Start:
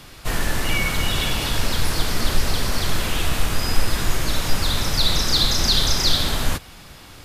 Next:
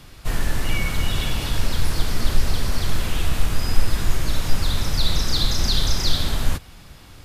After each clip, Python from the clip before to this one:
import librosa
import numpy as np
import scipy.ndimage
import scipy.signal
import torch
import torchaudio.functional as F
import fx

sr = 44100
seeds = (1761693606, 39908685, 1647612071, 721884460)

y = fx.low_shelf(x, sr, hz=180.0, db=7.5)
y = y * librosa.db_to_amplitude(-5.0)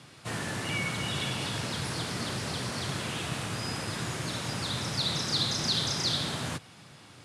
y = scipy.signal.sosfilt(scipy.signal.ellip(3, 1.0, 50, [120.0, 9800.0], 'bandpass', fs=sr, output='sos'), x)
y = y * librosa.db_to_amplitude(-3.5)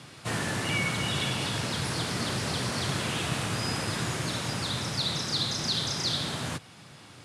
y = fx.rider(x, sr, range_db=4, speed_s=2.0)
y = y * librosa.db_to_amplitude(1.5)